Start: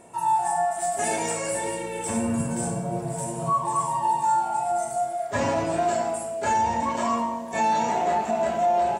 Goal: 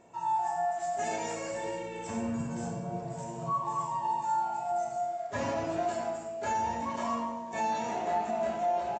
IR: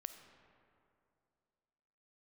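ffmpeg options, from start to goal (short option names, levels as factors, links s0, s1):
-filter_complex "[1:a]atrim=start_sample=2205,afade=t=out:st=0.31:d=0.01,atrim=end_sample=14112[s0];[0:a][s0]afir=irnorm=-1:irlink=0,aresample=16000,aresample=44100,volume=0.668"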